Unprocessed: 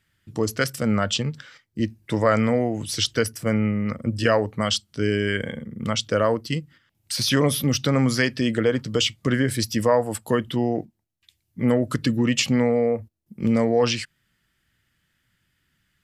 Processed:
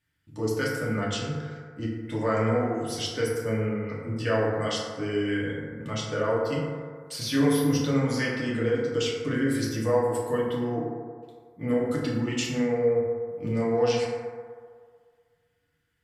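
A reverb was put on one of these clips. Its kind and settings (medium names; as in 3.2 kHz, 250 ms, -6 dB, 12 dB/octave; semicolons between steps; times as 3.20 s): FDN reverb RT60 1.9 s, low-frequency decay 0.7×, high-frequency decay 0.3×, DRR -6.5 dB; trim -12.5 dB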